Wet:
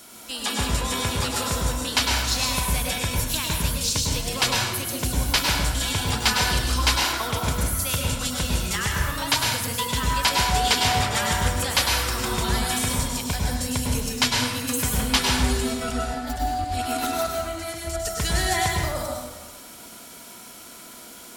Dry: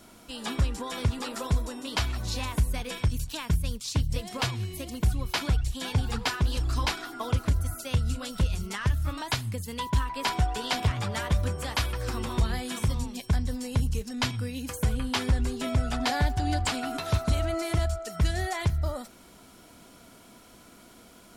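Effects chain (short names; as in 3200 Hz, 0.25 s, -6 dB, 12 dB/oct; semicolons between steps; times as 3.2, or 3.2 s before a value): tilt +2.5 dB/oct; 15.45–17.97 negative-ratio compressor -36 dBFS, ratio -0.5; plate-style reverb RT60 1.2 s, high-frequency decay 0.6×, pre-delay 90 ms, DRR -1.5 dB; gain +4 dB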